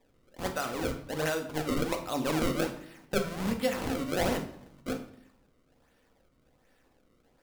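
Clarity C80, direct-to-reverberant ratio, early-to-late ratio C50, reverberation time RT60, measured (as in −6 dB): 13.5 dB, 4.0 dB, 10.0 dB, 0.65 s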